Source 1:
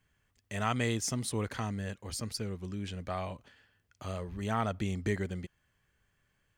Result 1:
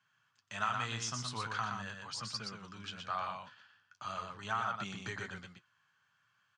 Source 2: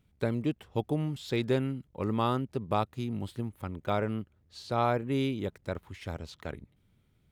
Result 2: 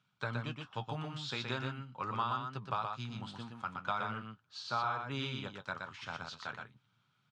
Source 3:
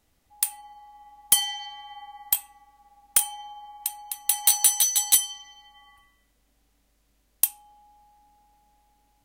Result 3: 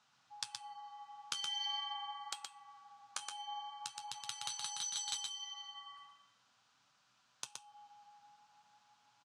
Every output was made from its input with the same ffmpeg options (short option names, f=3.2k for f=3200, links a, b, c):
-af "lowshelf=f=710:t=q:w=1.5:g=-12,acompressor=threshold=-33dB:ratio=8,aeval=exprs='0.266*(cos(1*acos(clip(val(0)/0.266,-1,1)))-cos(1*PI/2))+0.00266*(cos(8*acos(clip(val(0)/0.266,-1,1)))-cos(8*PI/2))':c=same,flanger=delay=4.7:depth=8.8:regen=-51:speed=0.42:shape=triangular,highpass=f=120:w=0.5412,highpass=f=120:w=1.3066,equalizer=f=120:t=q:w=4:g=8,equalizer=f=330:t=q:w=4:g=-5,equalizer=f=1.4k:t=q:w=4:g=5,equalizer=f=2k:t=q:w=4:g=-9,lowpass=f=6.3k:w=0.5412,lowpass=f=6.3k:w=1.3066,aecho=1:1:121:0.596,volume=5.5dB"